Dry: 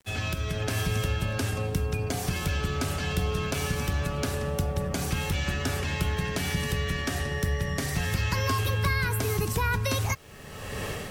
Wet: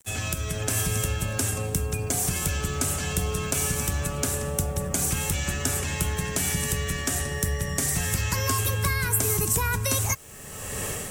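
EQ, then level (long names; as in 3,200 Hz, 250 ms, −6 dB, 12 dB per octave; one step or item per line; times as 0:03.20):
drawn EQ curve 4,600 Hz 0 dB, 7,700 Hz +15 dB, 12,000 Hz +11 dB
0.0 dB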